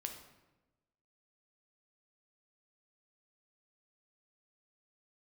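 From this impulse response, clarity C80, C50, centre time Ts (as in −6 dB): 9.5 dB, 7.0 dB, 24 ms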